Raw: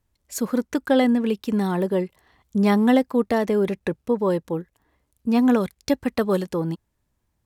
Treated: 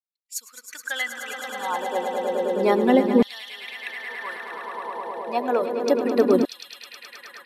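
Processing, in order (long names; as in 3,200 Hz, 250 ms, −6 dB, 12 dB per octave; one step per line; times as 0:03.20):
spectral dynamics exaggerated over time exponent 1.5
on a send: echo that builds up and dies away 106 ms, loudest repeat 5, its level −10 dB
on the sum: downsampling to 32,000 Hz
auto-filter high-pass saw down 0.31 Hz 280–3,800 Hz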